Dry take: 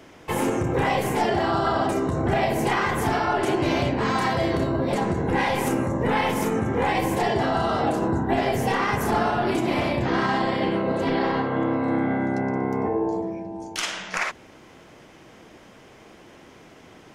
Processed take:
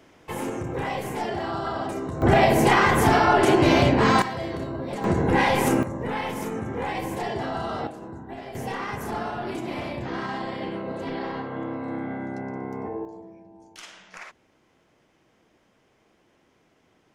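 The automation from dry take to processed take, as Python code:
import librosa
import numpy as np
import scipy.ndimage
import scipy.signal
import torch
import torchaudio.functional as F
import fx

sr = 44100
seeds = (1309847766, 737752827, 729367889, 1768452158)

y = fx.gain(x, sr, db=fx.steps((0.0, -6.5), (2.22, 5.0), (4.22, -7.5), (5.04, 2.5), (5.83, -6.5), (7.87, -15.5), (8.55, -8.0), (13.05, -15.5)))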